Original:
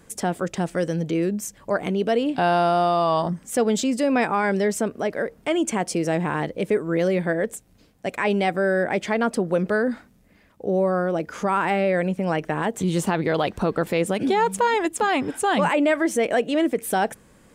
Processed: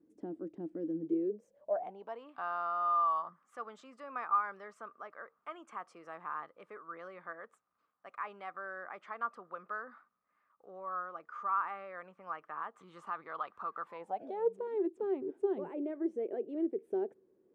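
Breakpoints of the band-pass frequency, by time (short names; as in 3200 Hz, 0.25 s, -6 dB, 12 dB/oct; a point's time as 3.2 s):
band-pass, Q 12
1.01 s 310 Hz
2.29 s 1200 Hz
13.83 s 1200 Hz
14.63 s 380 Hz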